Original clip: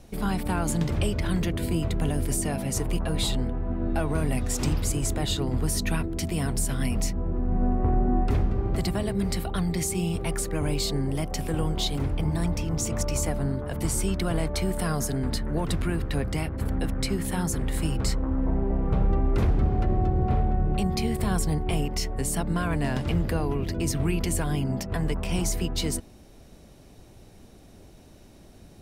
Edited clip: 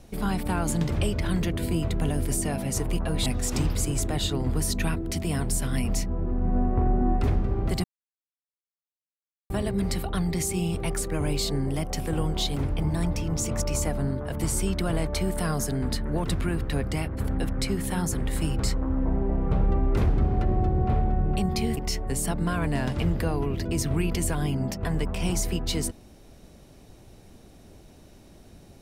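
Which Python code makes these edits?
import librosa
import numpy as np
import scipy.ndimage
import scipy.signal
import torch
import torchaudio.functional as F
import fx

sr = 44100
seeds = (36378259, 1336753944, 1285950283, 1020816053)

y = fx.edit(x, sr, fx.cut(start_s=3.26, length_s=1.07),
    fx.insert_silence(at_s=8.91, length_s=1.66),
    fx.cut(start_s=21.18, length_s=0.68), tone=tone)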